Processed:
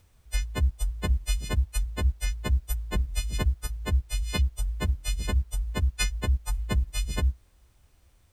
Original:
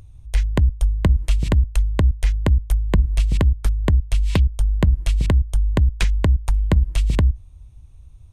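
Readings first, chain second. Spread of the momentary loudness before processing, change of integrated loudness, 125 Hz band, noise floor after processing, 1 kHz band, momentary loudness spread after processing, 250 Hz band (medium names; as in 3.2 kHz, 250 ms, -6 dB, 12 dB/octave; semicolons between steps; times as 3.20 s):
2 LU, -9.0 dB, -9.5 dB, -61 dBFS, -6.5 dB, 4 LU, -11.5 dB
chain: partials quantised in pitch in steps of 3 st; added noise pink -54 dBFS; upward expansion 1.5:1, over -28 dBFS; trim -6.5 dB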